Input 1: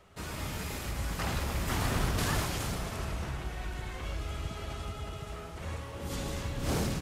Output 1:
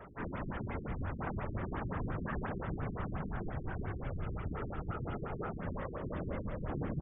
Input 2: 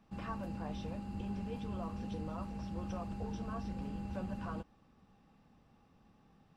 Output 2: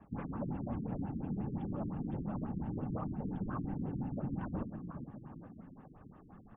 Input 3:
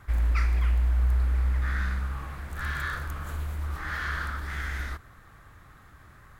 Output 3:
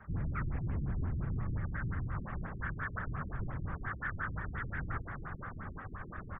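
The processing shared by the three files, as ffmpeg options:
-filter_complex "[0:a]aecho=1:1:5.2:0.48,asplit=2[s0][s1];[s1]adelay=420,lowpass=f=2000:p=1,volume=0.126,asplit=2[s2][s3];[s3]adelay=420,lowpass=f=2000:p=1,volume=0.52,asplit=2[s4][s5];[s5]adelay=420,lowpass=f=2000:p=1,volume=0.52,asplit=2[s6][s7];[s7]adelay=420,lowpass=f=2000:p=1,volume=0.52[s8];[s0][s2][s4][s6][s8]amix=inputs=5:normalize=0,afftfilt=real='hypot(re,im)*cos(2*PI*random(0))':imag='hypot(re,im)*sin(2*PI*random(1))':win_size=512:overlap=0.75,acrossover=split=230|1000[s9][s10][s11];[s9]volume=35.5,asoftclip=hard,volume=0.0282[s12];[s12][s10][s11]amix=inputs=3:normalize=0,bandreject=f=4000:w=25,areverse,acompressor=threshold=0.00316:ratio=5,areverse,highshelf=f=2200:t=q:w=1.5:g=-7.5,afftfilt=real='re*lt(b*sr/1024,390*pow(3700/390,0.5+0.5*sin(2*PI*5.7*pts/sr)))':imag='im*lt(b*sr/1024,390*pow(3700/390,0.5+0.5*sin(2*PI*5.7*pts/sr)))':win_size=1024:overlap=0.75,volume=5.31"

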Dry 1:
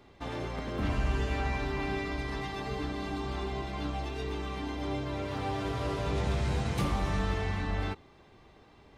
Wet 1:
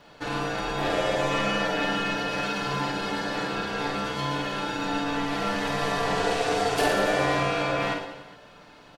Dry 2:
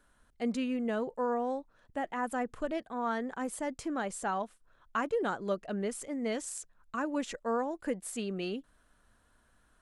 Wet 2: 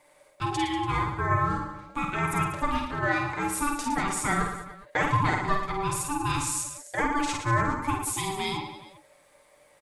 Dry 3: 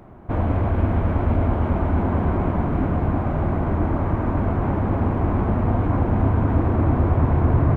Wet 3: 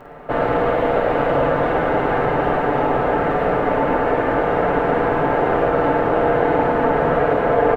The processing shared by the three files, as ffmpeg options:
-filter_complex "[0:a]tiltshelf=f=1200:g=-3,aecho=1:1:6.7:0.68,asplit=2[s0][s1];[s1]alimiter=limit=0.112:level=0:latency=1,volume=1.41[s2];[s0][s2]amix=inputs=2:normalize=0,aeval=exprs='val(0)*sin(2*PI*580*n/s)':c=same,aecho=1:1:50|112.5|190.6|288.3|410.4:0.631|0.398|0.251|0.158|0.1"

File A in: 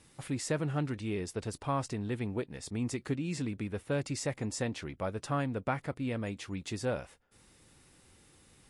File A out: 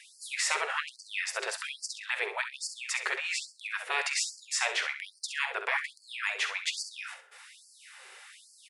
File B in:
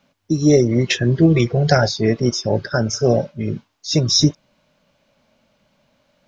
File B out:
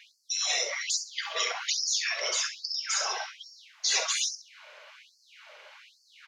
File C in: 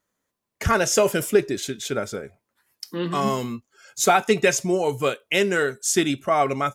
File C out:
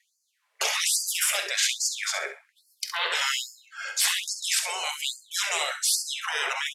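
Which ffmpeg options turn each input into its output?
-filter_complex "[0:a]lowpass=12000,bandreject=f=50:t=h:w=6,bandreject=f=100:t=h:w=6,bandreject=f=150:t=h:w=6,bandreject=f=200:t=h:w=6,bandreject=f=250:t=h:w=6,bandreject=f=300:t=h:w=6,bandreject=f=350:t=h:w=6,bandreject=f=400:t=h:w=6,acrossover=split=190|3000[s0][s1][s2];[s1]acompressor=threshold=0.0562:ratio=3[s3];[s0][s3][s2]amix=inputs=3:normalize=0,equalizer=f=1900:t=o:w=2:g=12,acrossover=split=410[s4][s5];[s4]acompressor=threshold=0.0355:ratio=6[s6];[s6][s5]amix=inputs=2:normalize=0,afftfilt=real='re*lt(hypot(re,im),0.112)':imag='im*lt(hypot(re,im),0.112)':win_size=1024:overlap=0.75,asplit=2[s7][s8];[s8]adelay=47,volume=0.2[s9];[s7][s9]amix=inputs=2:normalize=0,aecho=1:1:66|132|198:0.335|0.0804|0.0193,afftfilt=real='re*gte(b*sr/1024,350*pow(4400/350,0.5+0.5*sin(2*PI*1.2*pts/sr)))':imag='im*gte(b*sr/1024,350*pow(4400/350,0.5+0.5*sin(2*PI*1.2*pts/sr)))':win_size=1024:overlap=0.75,volume=2.11"

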